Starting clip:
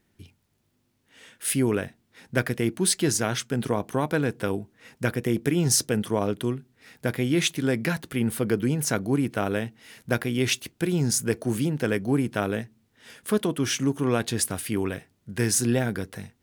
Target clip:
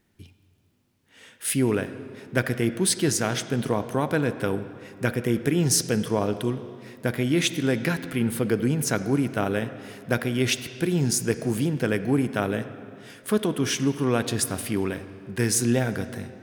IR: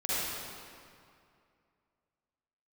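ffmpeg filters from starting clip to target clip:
-filter_complex "[0:a]asplit=2[a][b];[1:a]atrim=start_sample=2205,lowpass=5.5k[c];[b][c]afir=irnorm=-1:irlink=0,volume=-19.5dB[d];[a][d]amix=inputs=2:normalize=0"

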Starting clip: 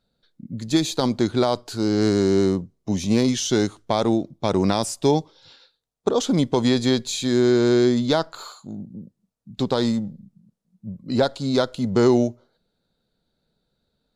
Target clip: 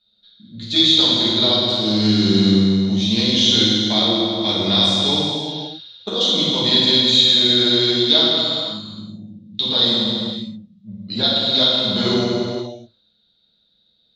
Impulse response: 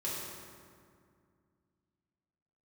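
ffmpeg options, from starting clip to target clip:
-filter_complex "[0:a]lowpass=f=3.7k:t=q:w=6.4,highshelf=f=2.1k:g=11.5[a];[1:a]atrim=start_sample=2205,afade=t=out:st=0.38:d=0.01,atrim=end_sample=17199,asetrate=24696,aresample=44100[b];[a][b]afir=irnorm=-1:irlink=0,volume=-10.5dB"

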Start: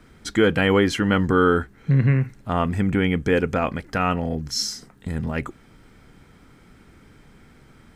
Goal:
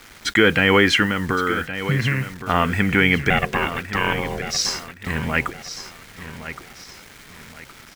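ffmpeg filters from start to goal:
-filter_complex "[0:a]equalizer=f=2.2k:t=o:w=2.1:g=14.5,acrossover=split=500[a][b];[b]alimiter=limit=-6.5dB:level=0:latency=1[c];[a][c]amix=inputs=2:normalize=0,asplit=3[d][e][f];[d]afade=t=out:st=1.05:d=0.02[g];[e]acompressor=threshold=-18dB:ratio=6,afade=t=in:st=1.05:d=0.02,afade=t=out:st=2.37:d=0.02[h];[f]afade=t=in:st=2.37:d=0.02[i];[g][h][i]amix=inputs=3:normalize=0,asettb=1/sr,asplit=3[j][k][l];[j]atrim=end=3.304[m];[k]atrim=start=3.3:end=4.65,asetpts=PTS-STARTPTS,afade=t=in:d=0.004:c=qsin,afade=t=out:st=1.346:d=0.004:c=qsin,aeval=exprs='val(0)*sin(2*PI*290*n/s)':c=same[n];[l]atrim=start=4.646[o];[m][n]acrossfade=d=0.004:c1=hsin:c2=qsin[p];[p][o]acrossfade=d=0.004:c1=qsin:c2=hsin,acrusher=bits=6:mix=0:aa=0.000001,aecho=1:1:1117|2234|3351:0.251|0.0829|0.0274"

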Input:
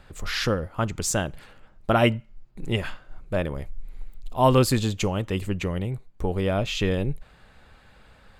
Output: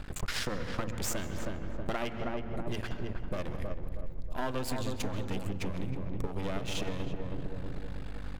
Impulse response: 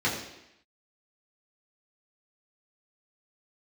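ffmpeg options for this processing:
-filter_complex "[0:a]asplit=2[a][b];[b]alimiter=limit=-17dB:level=0:latency=1:release=411,volume=0.5dB[c];[a][c]amix=inputs=2:normalize=0,aeval=exprs='val(0)+0.0126*(sin(2*PI*50*n/s)+sin(2*PI*2*50*n/s)/2+sin(2*PI*3*50*n/s)/3+sin(2*PI*4*50*n/s)/4+sin(2*PI*5*50*n/s)/5)':c=same,bandreject=f=56.98:t=h:w=4,bandreject=f=113.96:t=h:w=4,bandreject=f=170.94:t=h:w=4,bandreject=f=227.92:t=h:w=4,aeval=exprs='max(val(0),0)':c=same,asplit=2[d][e];[e]adelay=319,lowpass=f=1.1k:p=1,volume=-5dB,asplit=2[f][g];[g]adelay=319,lowpass=f=1.1k:p=1,volume=0.45,asplit=2[h][i];[i]adelay=319,lowpass=f=1.1k:p=1,volume=0.45,asplit=2[j][k];[k]adelay=319,lowpass=f=1.1k:p=1,volume=0.45,asplit=2[l][m];[m]adelay=319,lowpass=f=1.1k:p=1,volume=0.45,asplit=2[n][o];[o]adelay=319,lowpass=f=1.1k:p=1,volume=0.45[p];[d][f][h][j][l][n][p]amix=inputs=7:normalize=0,asplit=2[q][r];[1:a]atrim=start_sample=2205,adelay=128[s];[r][s]afir=irnorm=-1:irlink=0,volume=-25dB[t];[q][t]amix=inputs=2:normalize=0,acompressor=threshold=-29dB:ratio=6"

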